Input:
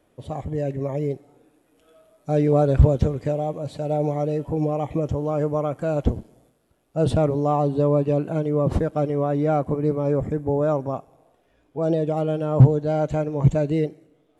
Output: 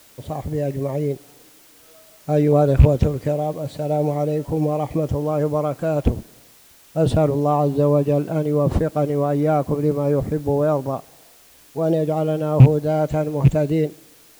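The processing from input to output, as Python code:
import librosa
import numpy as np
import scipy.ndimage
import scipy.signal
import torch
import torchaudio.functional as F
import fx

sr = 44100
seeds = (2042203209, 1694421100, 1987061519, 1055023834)

y = fx.rattle_buzz(x, sr, strikes_db=-12.0, level_db=-25.0)
y = fx.dmg_noise_colour(y, sr, seeds[0], colour='white', level_db=-53.0)
y = y * librosa.db_to_amplitude(2.5)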